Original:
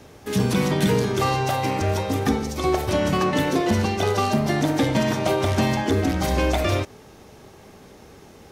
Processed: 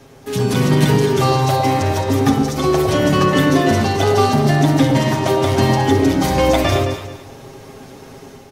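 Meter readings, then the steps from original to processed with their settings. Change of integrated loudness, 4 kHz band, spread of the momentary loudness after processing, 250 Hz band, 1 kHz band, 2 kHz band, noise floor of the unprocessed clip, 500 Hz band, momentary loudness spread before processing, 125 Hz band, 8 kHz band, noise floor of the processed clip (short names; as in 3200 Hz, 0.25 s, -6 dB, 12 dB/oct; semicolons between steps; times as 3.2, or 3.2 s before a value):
+6.5 dB, +6.0 dB, 4 LU, +6.5 dB, +6.5 dB, +5.0 dB, -47 dBFS, +6.5 dB, 3 LU, +7.5 dB, +5.5 dB, -40 dBFS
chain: comb 7.4 ms, depth 65%; echo with dull and thin repeats by turns 0.108 s, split 930 Hz, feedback 51%, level -3 dB; AGC gain up to 6 dB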